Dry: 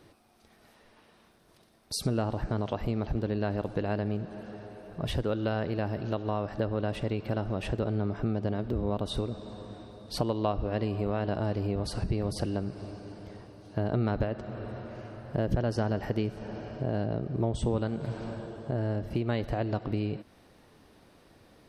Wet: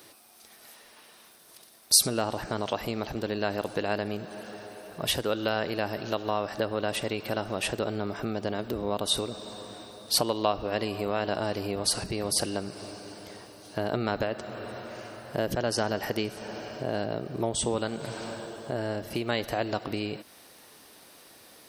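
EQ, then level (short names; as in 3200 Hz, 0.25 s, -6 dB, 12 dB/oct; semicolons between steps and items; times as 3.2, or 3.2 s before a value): RIAA curve recording; +5.0 dB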